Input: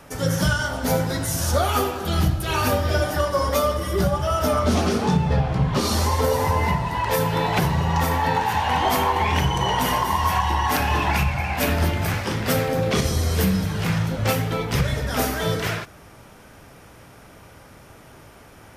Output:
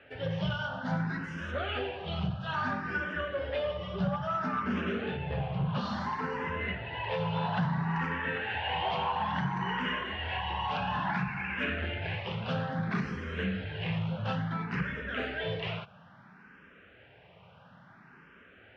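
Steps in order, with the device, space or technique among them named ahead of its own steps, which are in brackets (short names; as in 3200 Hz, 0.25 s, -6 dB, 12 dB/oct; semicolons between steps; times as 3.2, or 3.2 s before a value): barber-pole phaser into a guitar amplifier (endless phaser +0.59 Hz; soft clip -16.5 dBFS, distortion -19 dB; speaker cabinet 100–3400 Hz, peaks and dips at 180 Hz +7 dB, 310 Hz -6 dB, 1600 Hz +8 dB, 2800 Hz +7 dB); gain -7.5 dB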